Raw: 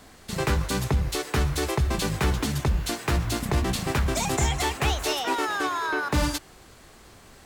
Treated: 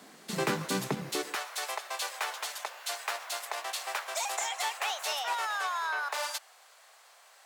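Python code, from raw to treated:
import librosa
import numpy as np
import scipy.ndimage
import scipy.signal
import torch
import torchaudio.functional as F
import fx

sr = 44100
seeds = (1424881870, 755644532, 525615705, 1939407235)

y = fx.rider(x, sr, range_db=3, speed_s=2.0)
y = fx.steep_highpass(y, sr, hz=fx.steps((0.0, 160.0), (1.33, 590.0)), slope=36)
y = y * 10.0 ** (-4.0 / 20.0)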